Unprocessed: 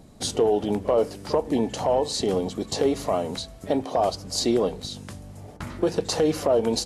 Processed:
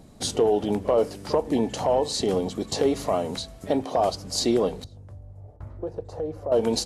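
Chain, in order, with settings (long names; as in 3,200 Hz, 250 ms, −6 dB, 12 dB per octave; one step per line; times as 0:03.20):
0:04.84–0:06.52: drawn EQ curve 110 Hz 0 dB, 190 Hz −17 dB, 580 Hz −6 dB, 2,900 Hz −27 dB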